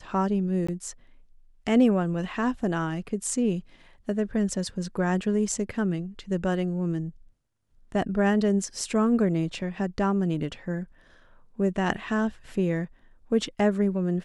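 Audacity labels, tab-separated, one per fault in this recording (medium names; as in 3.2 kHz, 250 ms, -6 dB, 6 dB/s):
0.670000	0.690000	dropout 15 ms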